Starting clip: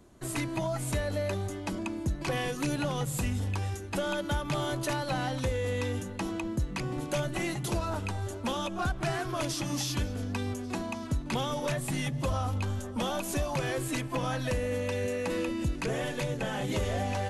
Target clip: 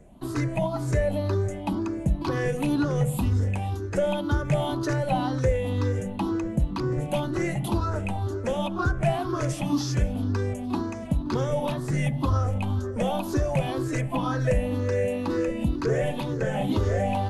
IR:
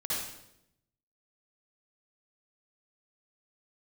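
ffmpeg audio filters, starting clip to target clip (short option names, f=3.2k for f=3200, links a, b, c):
-af "afftfilt=real='re*pow(10,13/40*sin(2*PI*(0.52*log(max(b,1)*sr/1024/100)/log(2)-(2)*(pts-256)/sr)))':imag='im*pow(10,13/40*sin(2*PI*(0.52*log(max(b,1)*sr/1024/100)/log(2)-(2)*(pts-256)/sr)))':win_size=1024:overlap=0.75,tiltshelf=f=1.4k:g=5.5,bandreject=f=81.55:t=h:w=4,bandreject=f=163.1:t=h:w=4,bandreject=f=244.65:t=h:w=4,bandreject=f=326.2:t=h:w=4,bandreject=f=407.75:t=h:w=4,bandreject=f=489.3:t=h:w=4,bandreject=f=570.85:t=h:w=4,bandreject=f=652.4:t=h:w=4,bandreject=f=733.95:t=h:w=4,bandreject=f=815.5:t=h:w=4,bandreject=f=897.05:t=h:w=4,bandreject=f=978.6:t=h:w=4,bandreject=f=1.06015k:t=h:w=4,bandreject=f=1.1417k:t=h:w=4,bandreject=f=1.22325k:t=h:w=4,bandreject=f=1.3048k:t=h:w=4,bandreject=f=1.38635k:t=h:w=4,bandreject=f=1.4679k:t=h:w=4,bandreject=f=1.54945k:t=h:w=4,bandreject=f=1.631k:t=h:w=4,bandreject=f=1.71255k:t=h:w=4,bandreject=f=1.7941k:t=h:w=4,bandreject=f=1.87565k:t=h:w=4,bandreject=f=1.9572k:t=h:w=4,bandreject=f=2.03875k:t=h:w=4,bandreject=f=2.1203k:t=h:w=4,bandreject=f=2.20185k:t=h:w=4"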